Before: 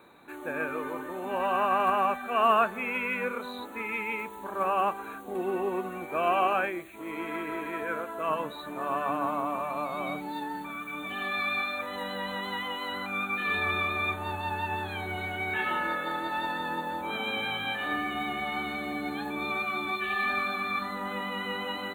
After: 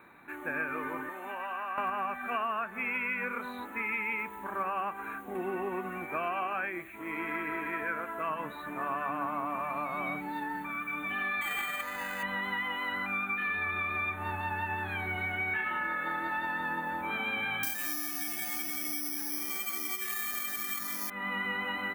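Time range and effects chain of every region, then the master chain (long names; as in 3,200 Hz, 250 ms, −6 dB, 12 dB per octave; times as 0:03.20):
0:01.09–0:01.78: high-pass filter 760 Hz 6 dB per octave + downward compressor 5 to 1, threshold −33 dBFS
0:11.41–0:12.23: phase distortion by the signal itself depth 0.1 ms + low-shelf EQ 480 Hz −7.5 dB + bad sample-rate conversion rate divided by 8×, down none, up hold
0:17.63–0:21.10: parametric band 310 Hz +9.5 dB 0.59 octaves + delay with a high-pass on its return 178 ms, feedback 61%, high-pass 1,500 Hz, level −5 dB + bad sample-rate conversion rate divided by 8×, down none, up zero stuff
whole clip: octave-band graphic EQ 500/2,000/4,000/8,000 Hz −6/+8/−10/−5 dB; downward compressor 12 to 1, threshold −29 dBFS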